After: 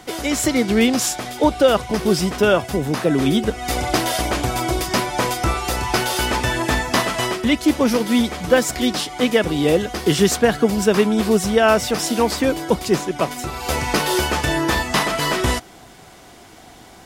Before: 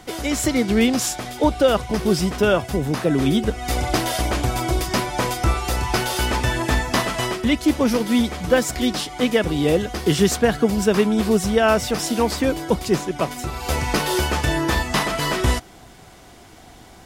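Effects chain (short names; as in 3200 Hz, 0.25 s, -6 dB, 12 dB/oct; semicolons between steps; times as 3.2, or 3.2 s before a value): low shelf 110 Hz -8 dB; gain +2.5 dB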